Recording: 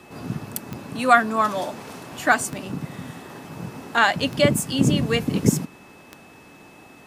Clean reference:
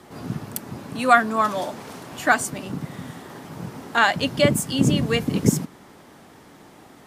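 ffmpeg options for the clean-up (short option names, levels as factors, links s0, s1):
-af "adeclick=t=4,bandreject=f=2600:w=30"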